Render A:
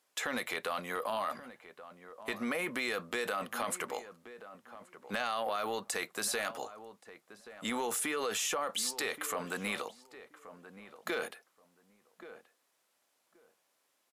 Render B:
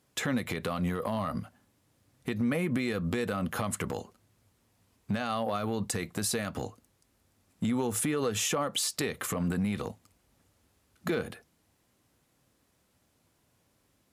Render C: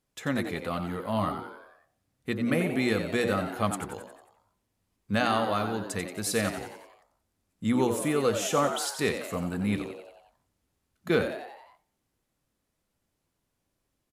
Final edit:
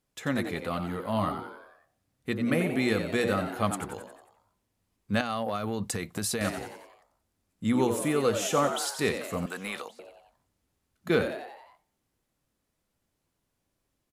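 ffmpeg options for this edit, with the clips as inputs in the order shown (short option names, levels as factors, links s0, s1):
-filter_complex "[2:a]asplit=3[s0][s1][s2];[s0]atrim=end=5.212[s3];[1:a]atrim=start=5.208:end=6.412[s4];[s1]atrim=start=6.408:end=9.462[s5];[0:a]atrim=start=9.458:end=9.992[s6];[s2]atrim=start=9.988[s7];[s3][s4]acrossfade=d=0.004:c1=hsin:c2=hsin[s8];[s8][s5]acrossfade=d=0.004:c1=hsin:c2=hsin[s9];[s9][s6]acrossfade=d=0.004:c1=hsin:c2=hsin[s10];[s10][s7]acrossfade=d=0.004:c1=hsin:c2=hsin"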